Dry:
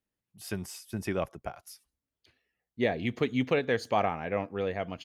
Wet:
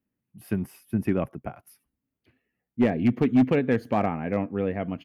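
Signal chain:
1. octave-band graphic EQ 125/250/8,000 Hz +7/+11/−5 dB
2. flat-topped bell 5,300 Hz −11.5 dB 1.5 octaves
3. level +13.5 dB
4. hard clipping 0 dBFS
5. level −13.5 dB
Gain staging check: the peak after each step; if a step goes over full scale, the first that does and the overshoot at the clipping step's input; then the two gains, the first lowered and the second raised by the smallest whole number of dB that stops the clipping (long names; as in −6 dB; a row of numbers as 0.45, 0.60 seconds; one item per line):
−7.0, −7.0, +6.5, 0.0, −13.5 dBFS
step 3, 6.5 dB
step 3 +6.5 dB, step 5 −6.5 dB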